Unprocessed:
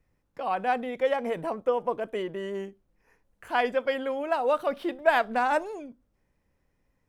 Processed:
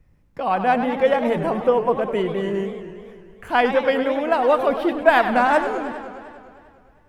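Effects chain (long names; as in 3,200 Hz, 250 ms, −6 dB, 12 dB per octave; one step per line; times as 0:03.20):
bass and treble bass +8 dB, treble −3 dB
feedback echo with a swinging delay time 101 ms, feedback 74%, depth 215 cents, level −10.5 dB
level +7 dB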